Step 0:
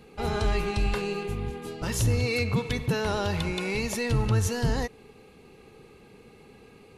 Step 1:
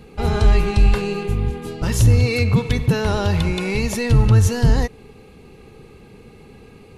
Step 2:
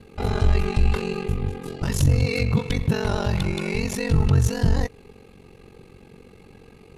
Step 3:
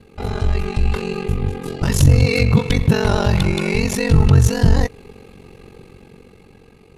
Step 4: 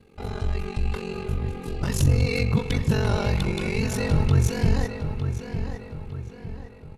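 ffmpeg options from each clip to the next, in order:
-af "lowshelf=f=170:g=9,volume=5dB"
-af "acontrast=29,aeval=exprs='val(0)*sin(2*PI*23*n/s)':c=same,volume=-6dB"
-af "dynaudnorm=f=270:g=9:m=11.5dB"
-filter_complex "[0:a]asplit=2[a][b];[b]adelay=906,lowpass=f=3.6k:p=1,volume=-8dB,asplit=2[c][d];[d]adelay=906,lowpass=f=3.6k:p=1,volume=0.44,asplit=2[e][f];[f]adelay=906,lowpass=f=3.6k:p=1,volume=0.44,asplit=2[g][h];[h]adelay=906,lowpass=f=3.6k:p=1,volume=0.44,asplit=2[i][j];[j]adelay=906,lowpass=f=3.6k:p=1,volume=0.44[k];[a][c][e][g][i][k]amix=inputs=6:normalize=0,volume=-8dB"

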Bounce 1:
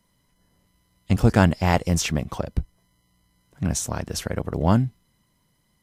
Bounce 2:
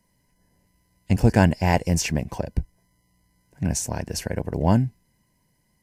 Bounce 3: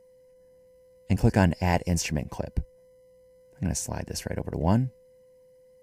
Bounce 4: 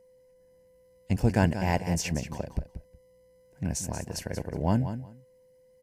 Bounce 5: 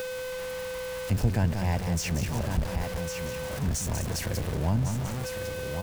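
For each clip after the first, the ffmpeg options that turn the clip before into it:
-af "superequalizer=10b=0.282:13b=0.398"
-af "aeval=exprs='val(0)+0.00316*sin(2*PI*510*n/s)':c=same,volume=-4dB"
-af "aecho=1:1:183|366:0.299|0.0508,volume=-2.5dB"
-filter_complex "[0:a]aeval=exprs='val(0)+0.5*0.0447*sgn(val(0))':c=same,aecho=1:1:1103:0.355,acrossover=split=120[a][b];[b]acompressor=threshold=-36dB:ratio=2[c];[a][c]amix=inputs=2:normalize=0,volume=1.5dB"

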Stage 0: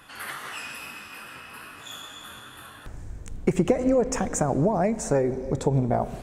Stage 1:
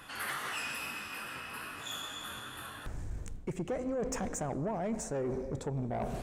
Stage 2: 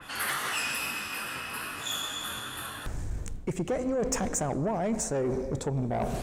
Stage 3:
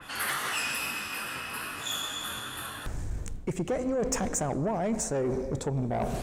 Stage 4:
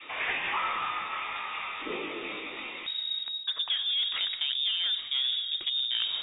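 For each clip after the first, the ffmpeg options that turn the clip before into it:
-af "areverse,acompressor=threshold=-29dB:ratio=10,areverse,asoftclip=type=tanh:threshold=-28dB"
-af "adynamicequalizer=threshold=0.002:dfrequency=3300:dqfactor=0.7:tfrequency=3300:tqfactor=0.7:attack=5:release=100:ratio=0.375:range=2:mode=boostabove:tftype=highshelf,volume=5.5dB"
-af anull
-af "aemphasis=mode=production:type=75fm,lowpass=f=3.2k:t=q:w=0.5098,lowpass=f=3.2k:t=q:w=0.6013,lowpass=f=3.2k:t=q:w=0.9,lowpass=f=3.2k:t=q:w=2.563,afreqshift=-3800"

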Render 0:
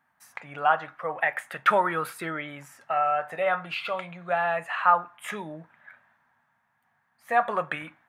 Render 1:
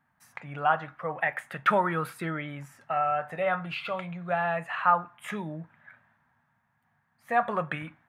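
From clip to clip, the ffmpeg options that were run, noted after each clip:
-af "bass=f=250:g=11,treble=f=4k:g=-3,volume=-2.5dB"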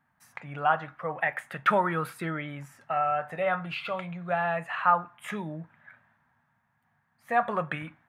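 -af anull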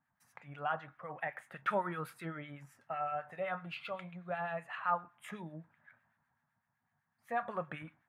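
-filter_complex "[0:a]acrossover=split=1300[a][b];[a]aeval=exprs='val(0)*(1-0.7/2+0.7/2*cos(2*PI*7.9*n/s))':c=same[c];[b]aeval=exprs='val(0)*(1-0.7/2-0.7/2*cos(2*PI*7.9*n/s))':c=same[d];[c][d]amix=inputs=2:normalize=0,volume=-7dB"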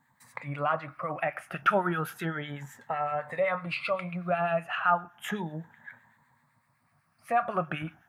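-filter_complex "[0:a]afftfilt=real='re*pow(10,9/40*sin(2*PI*(1*log(max(b,1)*sr/1024/100)/log(2)-(0.33)*(pts-256)/sr)))':imag='im*pow(10,9/40*sin(2*PI*(1*log(max(b,1)*sr/1024/100)/log(2)-(0.33)*(pts-256)/sr)))':win_size=1024:overlap=0.75,asplit=2[a][b];[b]acompressor=threshold=-44dB:ratio=6,volume=2dB[c];[a][c]amix=inputs=2:normalize=0,volume=5.5dB"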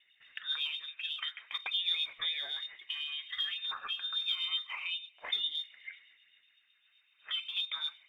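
-filter_complex "[0:a]acrossover=split=380[a][b];[b]acompressor=threshold=-39dB:ratio=6[c];[a][c]amix=inputs=2:normalize=0,lowpass=f=3.2k:t=q:w=0.5098,lowpass=f=3.2k:t=q:w=0.6013,lowpass=f=3.2k:t=q:w=0.9,lowpass=f=3.2k:t=q:w=2.563,afreqshift=-3800,aphaser=in_gain=1:out_gain=1:delay=4.8:decay=0.3:speed=1.1:type=sinusoidal"

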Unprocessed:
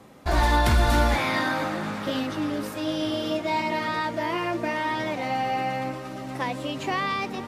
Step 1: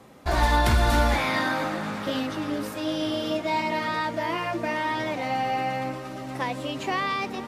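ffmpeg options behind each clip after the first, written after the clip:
-af "bandreject=f=50:t=h:w=6,bandreject=f=100:t=h:w=6,bandreject=f=150:t=h:w=6,bandreject=f=200:t=h:w=6,bandreject=f=250:t=h:w=6,bandreject=f=300:t=h:w=6,bandreject=f=350:t=h:w=6"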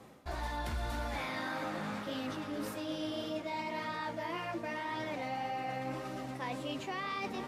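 -af "areverse,acompressor=threshold=-31dB:ratio=6,areverse,flanger=delay=9.8:depth=6:regen=-57:speed=1.8:shape=sinusoidal"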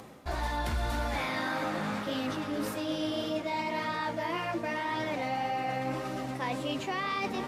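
-af "acompressor=mode=upward:threshold=-53dB:ratio=2.5,volume=5.5dB"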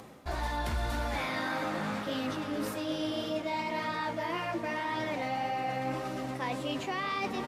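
-filter_complex "[0:a]asplit=2[a][b];[b]adelay=340,highpass=300,lowpass=3.4k,asoftclip=type=hard:threshold=-28.5dB,volume=-14dB[c];[a][c]amix=inputs=2:normalize=0,volume=-1dB"

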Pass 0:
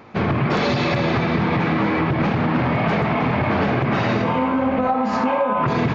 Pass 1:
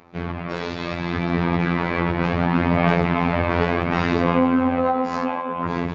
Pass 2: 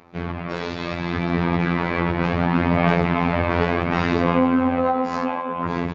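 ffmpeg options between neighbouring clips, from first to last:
-af "dynaudnorm=f=420:g=7:m=11.5dB,afftfilt=real='hypot(re,im)*cos(PI*b)':imag='0':win_size=2048:overlap=0.75,aphaser=in_gain=1:out_gain=1:delay=2.1:decay=0.25:speed=0.69:type=sinusoidal,volume=-5.5dB"
-af "aresample=32000,aresample=44100"

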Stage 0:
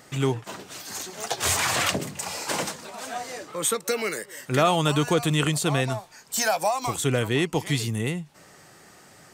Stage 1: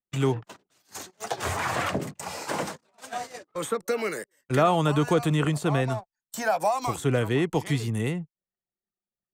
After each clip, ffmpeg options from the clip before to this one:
-filter_complex "[0:a]anlmdn=0.251,agate=range=-27dB:threshold=-34dB:ratio=16:detection=peak,acrossover=split=300|1900[a][b][c];[c]acompressor=threshold=-38dB:ratio=6[d];[a][b][d]amix=inputs=3:normalize=0"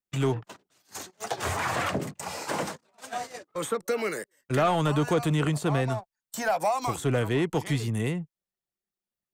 -af "asoftclip=type=tanh:threshold=-16dB"

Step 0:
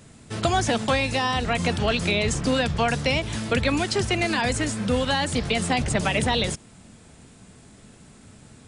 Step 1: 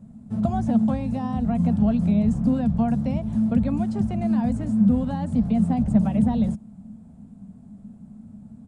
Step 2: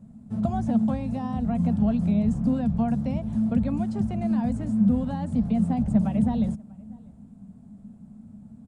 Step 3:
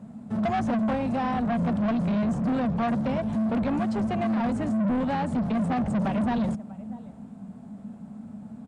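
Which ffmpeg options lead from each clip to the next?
-af "firequalizer=gain_entry='entry(140,0);entry(210,14);entry(330,-12);entry(460,-11);entry(670,-4);entry(1100,-13);entry(1900,-23);entry(2800,-25);entry(5400,-26);entry(8200,-21)':delay=0.05:min_phase=1"
-filter_complex "[0:a]asplit=2[a][b];[b]adelay=641.4,volume=-25dB,highshelf=f=4k:g=-14.4[c];[a][c]amix=inputs=2:normalize=0,volume=-2.5dB"
-filter_complex "[0:a]asplit=2[a][b];[b]highpass=f=720:p=1,volume=26dB,asoftclip=type=tanh:threshold=-9dB[c];[a][c]amix=inputs=2:normalize=0,lowpass=f=2.3k:p=1,volume=-6dB,asoftclip=type=tanh:threshold=-16.5dB,volume=-4.5dB"

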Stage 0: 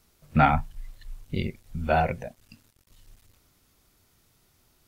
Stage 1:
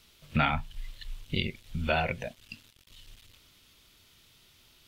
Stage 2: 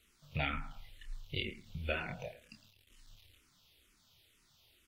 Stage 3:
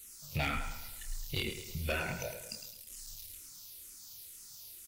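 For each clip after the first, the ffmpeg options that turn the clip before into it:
-af "equalizer=f=3.2k:t=o:w=1.2:g=14,bandreject=f=760:w=13,acompressor=threshold=-28dB:ratio=2"
-filter_complex "[0:a]asplit=2[a][b];[b]adelay=28,volume=-7dB[c];[a][c]amix=inputs=2:normalize=0,aecho=1:1:109|218|327:0.178|0.0676|0.0257,asplit=2[d][e];[e]afreqshift=-2.1[f];[d][f]amix=inputs=2:normalize=1,volume=-6dB"
-af "aexciter=amount=7.8:drive=5.1:freq=4.7k,asoftclip=type=tanh:threshold=-29.5dB,aecho=1:1:107|214|321|428|535|642:0.316|0.161|0.0823|0.0419|0.0214|0.0109,volume=4dB"

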